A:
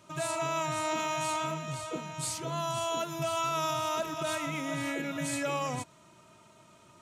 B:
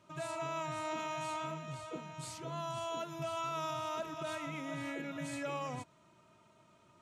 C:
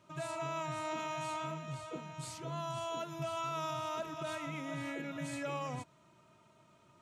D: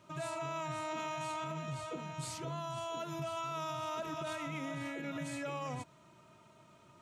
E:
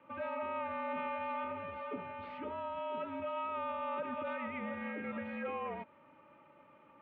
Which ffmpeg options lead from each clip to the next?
-af "highshelf=f=5.7k:g=-10,volume=-6.5dB"
-af "equalizer=f=140:w=5.8:g=3.5"
-af "alimiter=level_in=11dB:limit=-24dB:level=0:latency=1:release=51,volume=-11dB,volume=3.5dB"
-af "highpass=f=250:t=q:w=0.5412,highpass=f=250:t=q:w=1.307,lowpass=f=2.7k:t=q:w=0.5176,lowpass=f=2.7k:t=q:w=0.7071,lowpass=f=2.7k:t=q:w=1.932,afreqshift=-59,volume=1.5dB"

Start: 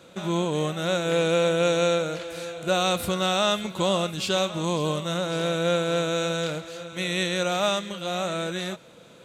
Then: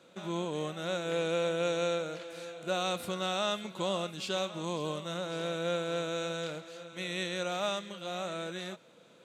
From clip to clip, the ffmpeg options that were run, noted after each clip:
-af "highpass=160,highshelf=f=11k:g=-7.5,volume=-8.5dB"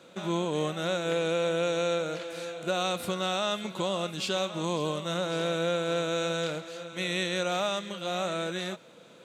-af "alimiter=limit=-23.5dB:level=0:latency=1:release=200,volume=6dB"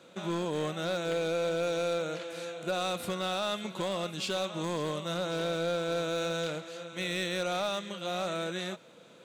-af "volume=22.5dB,asoftclip=hard,volume=-22.5dB,volume=-2dB"

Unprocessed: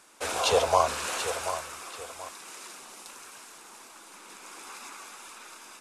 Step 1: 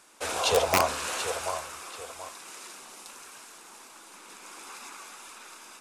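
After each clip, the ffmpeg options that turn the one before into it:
-af "aeval=exprs='(mod(3.98*val(0)+1,2)-1)/3.98':c=same,bandreject=f=68.45:t=h:w=4,bandreject=f=136.9:t=h:w=4,bandreject=f=205.35:t=h:w=4,bandreject=f=273.8:t=h:w=4,bandreject=f=342.25:t=h:w=4,bandreject=f=410.7:t=h:w=4,bandreject=f=479.15:t=h:w=4,bandreject=f=547.6:t=h:w=4,bandreject=f=616.05:t=h:w=4,bandreject=f=684.5:t=h:w=4,bandreject=f=752.95:t=h:w=4,bandreject=f=821.4:t=h:w=4,bandreject=f=889.85:t=h:w=4,bandreject=f=958.3:t=h:w=4,bandreject=f=1.02675k:t=h:w=4,bandreject=f=1.0952k:t=h:w=4,bandreject=f=1.16365k:t=h:w=4,bandreject=f=1.2321k:t=h:w=4,bandreject=f=1.30055k:t=h:w=4,bandreject=f=1.369k:t=h:w=4,bandreject=f=1.43745k:t=h:w=4,bandreject=f=1.5059k:t=h:w=4,bandreject=f=1.57435k:t=h:w=4,bandreject=f=1.6428k:t=h:w=4,bandreject=f=1.71125k:t=h:w=4,bandreject=f=1.7797k:t=h:w=4,bandreject=f=1.84815k:t=h:w=4,bandreject=f=1.9166k:t=h:w=4,bandreject=f=1.98505k:t=h:w=4,bandreject=f=2.0535k:t=h:w=4,bandreject=f=2.12195k:t=h:w=4,bandreject=f=2.1904k:t=h:w=4,bandreject=f=2.25885k:t=h:w=4,bandreject=f=2.3273k:t=h:w=4,bandreject=f=2.39575k:t=h:w=4"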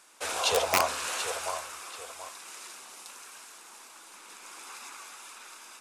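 -af "lowshelf=f=460:g=-8.5"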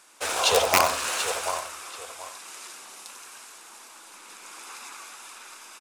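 -filter_complex "[0:a]asplit=2[a][b];[b]acrusher=bits=4:mix=0:aa=0.5,volume=-10dB[c];[a][c]amix=inputs=2:normalize=0,aecho=1:1:92:0.282,volume=2.5dB"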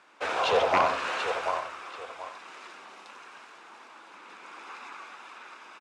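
-af "asoftclip=type=tanh:threshold=-17dB,highpass=110,lowpass=2.5k,volume=1.5dB"

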